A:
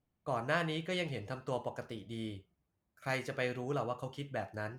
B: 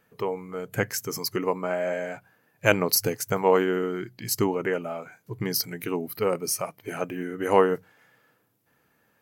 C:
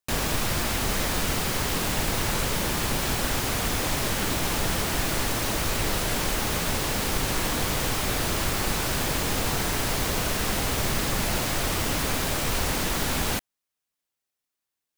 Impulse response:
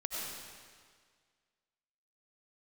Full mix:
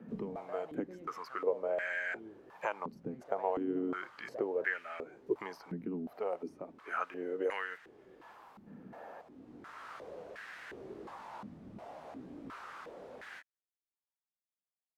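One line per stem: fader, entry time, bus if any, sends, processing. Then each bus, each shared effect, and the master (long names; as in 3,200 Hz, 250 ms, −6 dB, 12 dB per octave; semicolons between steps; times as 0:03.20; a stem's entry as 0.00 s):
−2.0 dB, 0.00 s, no send, brickwall limiter −26 dBFS, peak gain reduction 8 dB
−0.5 dB, 0.00 s, no send, high-pass filter 200 Hz; multiband upward and downward compressor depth 100%
−5.5 dB, 0.00 s, no send, micro pitch shift up and down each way 25 cents; automatic ducking −10 dB, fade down 0.75 s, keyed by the second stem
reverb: not used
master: band-pass on a step sequencer 2.8 Hz 210–1,700 Hz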